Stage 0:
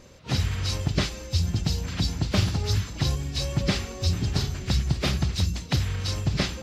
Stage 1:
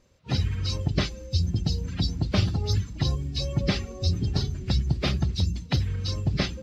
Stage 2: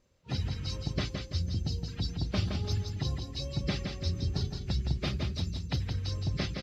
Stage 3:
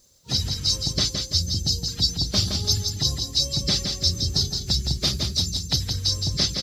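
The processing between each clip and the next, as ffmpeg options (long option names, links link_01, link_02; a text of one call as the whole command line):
ffmpeg -i in.wav -af "afftdn=noise_reduction=14:noise_floor=-34" out.wav
ffmpeg -i in.wav -af "aecho=1:1:167|334|501|668|835:0.531|0.212|0.0849|0.034|0.0136,volume=-7.5dB" out.wav
ffmpeg -i in.wav -af "aexciter=amount=8.6:drive=4.1:freq=3800,volume=4dB" out.wav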